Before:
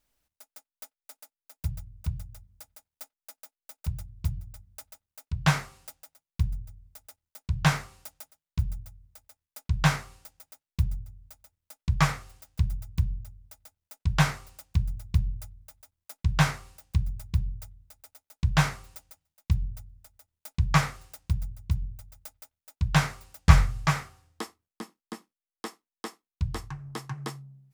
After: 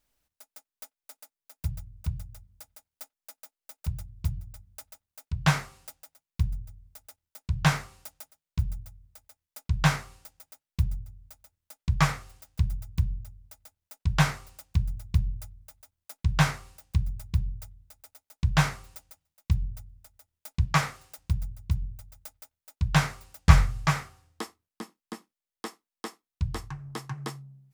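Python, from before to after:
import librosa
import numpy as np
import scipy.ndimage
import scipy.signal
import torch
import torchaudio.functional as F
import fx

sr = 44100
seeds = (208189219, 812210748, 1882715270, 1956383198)

y = fx.highpass(x, sr, hz=160.0, slope=6, at=(20.65, 21.18))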